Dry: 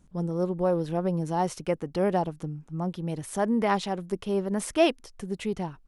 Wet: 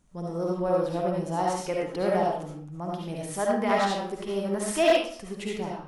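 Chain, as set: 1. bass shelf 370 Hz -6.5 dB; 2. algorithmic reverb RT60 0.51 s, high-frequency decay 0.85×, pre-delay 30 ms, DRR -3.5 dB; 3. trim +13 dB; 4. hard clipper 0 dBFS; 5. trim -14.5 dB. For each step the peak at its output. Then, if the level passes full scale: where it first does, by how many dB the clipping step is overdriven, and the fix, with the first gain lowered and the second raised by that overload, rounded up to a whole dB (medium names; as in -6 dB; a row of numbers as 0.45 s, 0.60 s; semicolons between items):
-10.5 dBFS, -5.5 dBFS, +7.5 dBFS, 0.0 dBFS, -14.5 dBFS; step 3, 7.5 dB; step 3 +5 dB, step 5 -6.5 dB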